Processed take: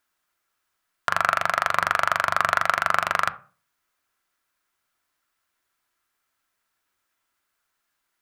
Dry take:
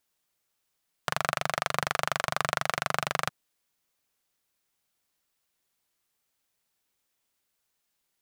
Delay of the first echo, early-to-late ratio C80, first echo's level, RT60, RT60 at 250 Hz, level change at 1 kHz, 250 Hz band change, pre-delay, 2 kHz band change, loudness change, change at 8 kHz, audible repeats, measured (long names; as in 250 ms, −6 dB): no echo audible, 23.5 dB, no echo audible, 0.40 s, 0.45 s, +8.5 dB, −1.0 dB, 3 ms, +8.0 dB, +7.5 dB, −0.5 dB, no echo audible